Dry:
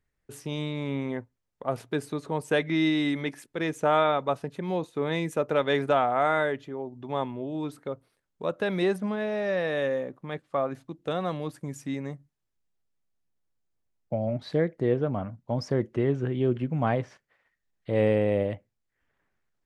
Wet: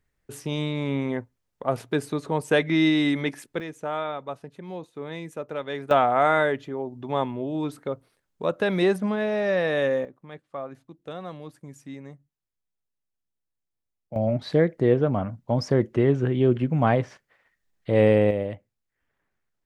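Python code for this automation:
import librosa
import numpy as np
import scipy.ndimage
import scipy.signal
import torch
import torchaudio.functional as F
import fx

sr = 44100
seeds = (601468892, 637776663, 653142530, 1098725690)

y = fx.gain(x, sr, db=fx.steps((0.0, 4.0), (3.6, -7.0), (5.91, 4.0), (10.05, -7.0), (14.16, 5.0), (18.31, -1.5)))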